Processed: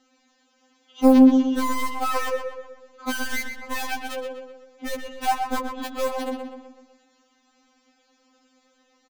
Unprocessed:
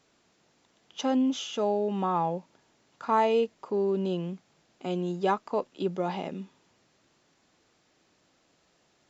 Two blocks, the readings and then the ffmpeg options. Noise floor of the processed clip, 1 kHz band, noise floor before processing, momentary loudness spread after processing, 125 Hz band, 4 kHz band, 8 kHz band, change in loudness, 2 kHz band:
−66 dBFS, +2.5 dB, −68 dBFS, 20 LU, below −10 dB, +4.5 dB, can't be measured, +6.0 dB, +12.0 dB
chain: -filter_complex "[0:a]acrossover=split=330|1600[link_01][link_02][link_03];[link_01]acompressor=threshold=-31dB:ratio=4[link_04];[link_02]acompressor=threshold=-30dB:ratio=4[link_05];[link_03]acompressor=threshold=-51dB:ratio=4[link_06];[link_04][link_05][link_06]amix=inputs=3:normalize=0,highshelf=frequency=3600:gain=-2,asplit=2[link_07][link_08];[link_08]acrusher=bits=3:mix=0:aa=0.000001,volume=-3dB[link_09];[link_07][link_09]amix=inputs=2:normalize=0,asplit=2[link_10][link_11];[link_11]adelay=124,lowpass=frequency=3400:poles=1,volume=-5.5dB,asplit=2[link_12][link_13];[link_13]adelay=124,lowpass=frequency=3400:poles=1,volume=0.52,asplit=2[link_14][link_15];[link_15]adelay=124,lowpass=frequency=3400:poles=1,volume=0.52,asplit=2[link_16][link_17];[link_17]adelay=124,lowpass=frequency=3400:poles=1,volume=0.52,asplit=2[link_18][link_19];[link_19]adelay=124,lowpass=frequency=3400:poles=1,volume=0.52,asplit=2[link_20][link_21];[link_21]adelay=124,lowpass=frequency=3400:poles=1,volume=0.52,asplit=2[link_22][link_23];[link_23]adelay=124,lowpass=frequency=3400:poles=1,volume=0.52[link_24];[link_10][link_12][link_14][link_16][link_18][link_20][link_22][link_24]amix=inputs=8:normalize=0,afftfilt=real='re*3.46*eq(mod(b,12),0)':imag='im*3.46*eq(mod(b,12),0)':win_size=2048:overlap=0.75,volume=6dB"

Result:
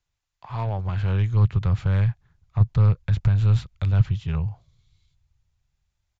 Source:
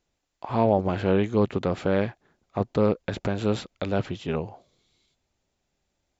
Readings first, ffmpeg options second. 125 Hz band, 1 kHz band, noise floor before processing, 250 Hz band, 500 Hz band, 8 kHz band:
+11.5 dB, −7.0 dB, −79 dBFS, −7.0 dB, −14.0 dB, can't be measured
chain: -filter_complex "[0:a]firequalizer=gain_entry='entry(120,0);entry(220,-17);entry(600,-14);entry(1000,-4)':delay=0.05:min_phase=1,aresample=16000,aresample=44100,aeval=exprs='0.112*(cos(1*acos(clip(val(0)/0.112,-1,1)))-cos(1*PI/2))+0.00398*(cos(6*acos(clip(val(0)/0.112,-1,1)))-cos(6*PI/2))':channel_layout=same,acrossover=split=160[link_01][link_02];[link_01]dynaudnorm=framelen=250:gausssize=9:maxgain=16dB[link_03];[link_03][link_02]amix=inputs=2:normalize=0"

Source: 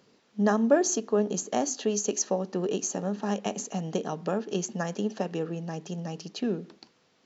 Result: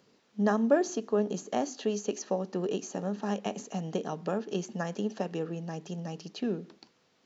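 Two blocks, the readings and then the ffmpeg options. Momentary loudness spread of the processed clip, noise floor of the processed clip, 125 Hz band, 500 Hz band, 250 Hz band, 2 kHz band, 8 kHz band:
11 LU, −69 dBFS, −2.5 dB, −2.5 dB, −2.5 dB, −2.5 dB, can't be measured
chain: -filter_complex "[0:a]acrossover=split=4700[link_01][link_02];[link_02]acompressor=threshold=-47dB:ratio=4:attack=1:release=60[link_03];[link_01][link_03]amix=inputs=2:normalize=0,volume=-2.5dB"

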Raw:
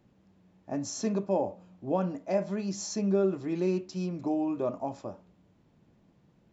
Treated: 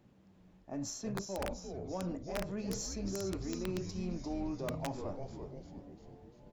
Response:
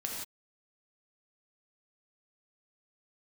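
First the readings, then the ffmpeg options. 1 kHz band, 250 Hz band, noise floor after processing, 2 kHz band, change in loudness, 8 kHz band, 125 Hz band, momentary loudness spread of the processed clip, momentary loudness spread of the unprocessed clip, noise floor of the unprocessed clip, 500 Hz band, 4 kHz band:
−8.0 dB, −8.0 dB, −63 dBFS, −0.5 dB, −8.5 dB, can't be measured, −5.0 dB, 12 LU, 9 LU, −66 dBFS, −10.0 dB, −1.5 dB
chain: -filter_complex "[0:a]areverse,acompressor=threshold=-36dB:ratio=8,areverse,asplit=9[link_01][link_02][link_03][link_04][link_05][link_06][link_07][link_08][link_09];[link_02]adelay=347,afreqshift=-150,volume=-5.5dB[link_10];[link_03]adelay=694,afreqshift=-300,volume=-10.1dB[link_11];[link_04]adelay=1041,afreqshift=-450,volume=-14.7dB[link_12];[link_05]adelay=1388,afreqshift=-600,volume=-19.2dB[link_13];[link_06]adelay=1735,afreqshift=-750,volume=-23.8dB[link_14];[link_07]adelay=2082,afreqshift=-900,volume=-28.4dB[link_15];[link_08]adelay=2429,afreqshift=-1050,volume=-33dB[link_16];[link_09]adelay=2776,afreqshift=-1200,volume=-37.6dB[link_17];[link_01][link_10][link_11][link_12][link_13][link_14][link_15][link_16][link_17]amix=inputs=9:normalize=0,aeval=exprs='(mod(25.1*val(0)+1,2)-1)/25.1':channel_layout=same,aeval=exprs='0.0422*(cos(1*acos(clip(val(0)/0.0422,-1,1)))-cos(1*PI/2))+0.000944*(cos(6*acos(clip(val(0)/0.0422,-1,1)))-cos(6*PI/2))':channel_layout=same"

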